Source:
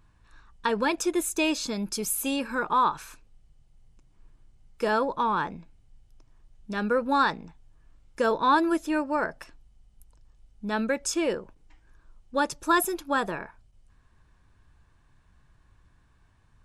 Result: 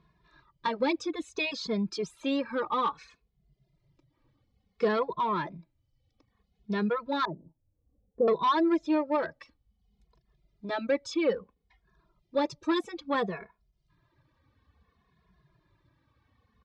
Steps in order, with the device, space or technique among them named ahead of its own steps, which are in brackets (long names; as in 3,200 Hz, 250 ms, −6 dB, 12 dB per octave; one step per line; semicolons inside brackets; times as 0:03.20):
barber-pole flanger into a guitar amplifier (barber-pole flanger 2.4 ms −0.59 Hz; soft clipping −22.5 dBFS, distortion −15 dB; loudspeaker in its box 93–4,300 Hz, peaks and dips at 100 Hz −7 dB, 250 Hz −4 dB, 820 Hz −7 dB, 1,500 Hz −10 dB, 2,800 Hz −8 dB)
reverb reduction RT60 0.74 s
0:07.25–0:08.28: inverse Chebyshev low-pass filter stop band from 3,900 Hz, stop band 80 dB
level +6 dB